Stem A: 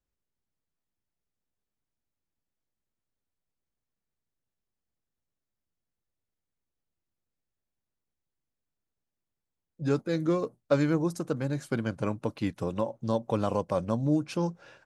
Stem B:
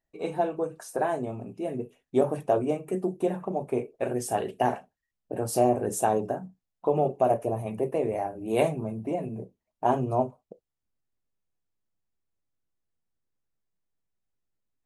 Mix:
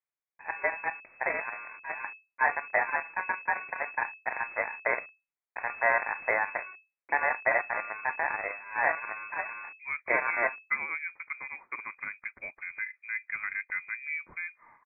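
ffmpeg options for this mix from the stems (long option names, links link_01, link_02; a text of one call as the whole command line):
ffmpeg -i stem1.wav -i stem2.wav -filter_complex "[0:a]highpass=frequency=800:poles=1,volume=-1dB[link_01];[1:a]aeval=exprs='val(0)*sin(2*PI*1300*n/s)':channel_layout=same,acrusher=bits=5:dc=4:mix=0:aa=0.000001,adelay=250,volume=0dB[link_02];[link_01][link_02]amix=inputs=2:normalize=0,lowpass=frequency=2200:width_type=q:width=0.5098,lowpass=frequency=2200:width_type=q:width=0.6013,lowpass=frequency=2200:width_type=q:width=0.9,lowpass=frequency=2200:width_type=q:width=2.563,afreqshift=-2600" out.wav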